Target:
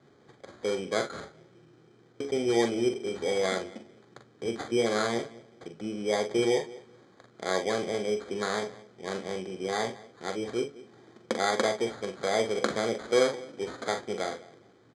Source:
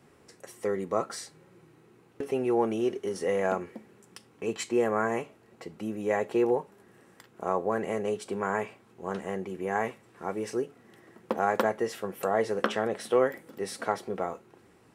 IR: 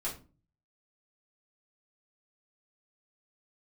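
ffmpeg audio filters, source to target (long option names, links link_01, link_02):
-filter_complex "[0:a]asplit=2[link_01][link_02];[link_02]adelay=204,lowpass=frequency=970:poles=1,volume=-18dB,asplit=2[link_03][link_04];[link_04]adelay=204,lowpass=frequency=970:poles=1,volume=0.24[link_05];[link_03][link_05]amix=inputs=2:normalize=0[link_06];[link_01][link_06]amix=inputs=2:normalize=0,acrusher=samples=16:mix=1:aa=0.000001,adynamicsmooth=sensitivity=7:basefreq=6600,highpass=110,equalizer=frequency=120:width_type=q:width=4:gain=3,equalizer=frequency=180:width_type=q:width=4:gain=-4,equalizer=frequency=950:width_type=q:width=4:gain=-7,equalizer=frequency=2500:width_type=q:width=4:gain=-5,lowpass=frequency=8800:width=0.5412,lowpass=frequency=8800:width=1.3066,asplit=2[link_07][link_08];[link_08]aecho=0:1:43|57:0.422|0.158[link_09];[link_07][link_09]amix=inputs=2:normalize=0"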